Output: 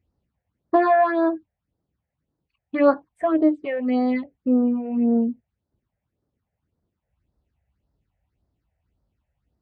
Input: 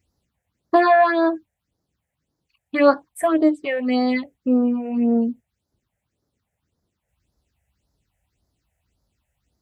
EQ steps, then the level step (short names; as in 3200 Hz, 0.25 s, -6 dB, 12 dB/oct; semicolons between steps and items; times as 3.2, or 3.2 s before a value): tape spacing loss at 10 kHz 37 dB; high shelf 5100 Hz +4.5 dB; 0.0 dB